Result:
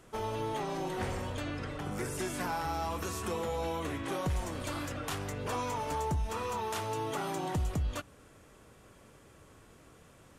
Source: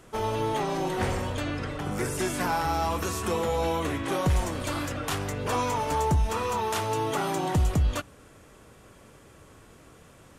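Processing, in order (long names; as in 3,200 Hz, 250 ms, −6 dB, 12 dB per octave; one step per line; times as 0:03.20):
downward compressor 1.5 to 1, threshold −30 dBFS, peak gain reduction 4 dB
level −5 dB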